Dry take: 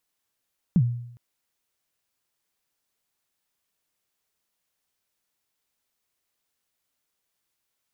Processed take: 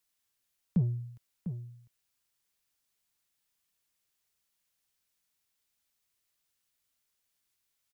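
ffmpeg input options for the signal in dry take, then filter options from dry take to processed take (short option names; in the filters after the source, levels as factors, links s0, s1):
-f lavfi -i "aevalsrc='0.224*pow(10,-3*t/0.73)*sin(2*PI*(200*0.059/log(120/200)*(exp(log(120/200)*min(t,0.059)/0.059)-1)+120*max(t-0.059,0)))':d=0.41:s=44100"
-filter_complex "[0:a]equalizer=f=510:w=0.36:g=-7,acrossover=split=150|440[s0][s1][s2];[s0]asoftclip=type=tanh:threshold=0.0266[s3];[s3][s1][s2]amix=inputs=3:normalize=0,asplit=2[s4][s5];[s5]adelay=699.7,volume=0.316,highshelf=f=4000:g=-15.7[s6];[s4][s6]amix=inputs=2:normalize=0"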